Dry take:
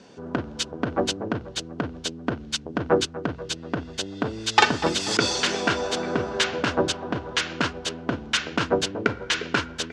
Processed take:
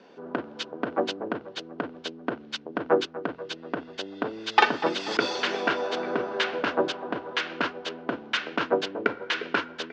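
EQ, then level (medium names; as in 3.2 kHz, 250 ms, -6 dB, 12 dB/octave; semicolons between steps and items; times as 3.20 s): high-pass 300 Hz 12 dB/octave; distance through air 220 m; 0.0 dB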